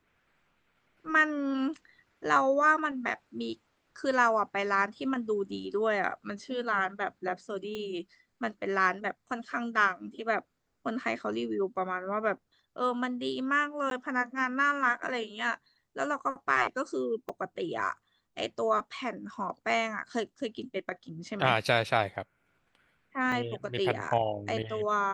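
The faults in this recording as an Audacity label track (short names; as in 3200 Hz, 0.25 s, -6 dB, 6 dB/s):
7.750000	7.750000	pop -24 dBFS
13.900000	13.910000	gap 12 ms
17.290000	17.290000	gap 4.3 ms
23.320000	23.320000	gap 2.3 ms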